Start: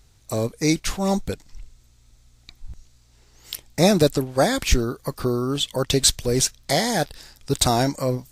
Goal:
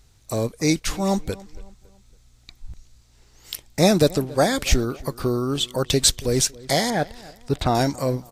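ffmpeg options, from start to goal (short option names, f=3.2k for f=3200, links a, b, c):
-filter_complex "[0:a]asettb=1/sr,asplit=3[a][b][c];[a]atrim=end=6.904[d];[b]atrim=start=6.9:end=7.75,asetpts=PTS-STARTPTS,afade=t=in:d=0.004:c=qsin,afade=t=out:st=0.846:d=0.004:c=qsin,acrossover=split=3100[e][f];[f]acompressor=threshold=-44dB:ratio=4:attack=1:release=60[g];[e][g]amix=inputs=2:normalize=0[h];[c]atrim=start=7.746[i];[d][h]acrossfade=d=0.004:c1=hsin:c2=qsin[j];[j][i]acrossfade=d=0.004:c1=qsin:c2=hsin,asplit=2[k][l];[l]adelay=278,lowpass=f=2.8k:p=1,volume=-21dB,asplit=2[m][n];[n]adelay=278,lowpass=f=2.8k:p=1,volume=0.41,asplit=2[o][p];[p]adelay=278,lowpass=f=2.8k:p=1,volume=0.41[q];[k][m][o][q]amix=inputs=4:normalize=0"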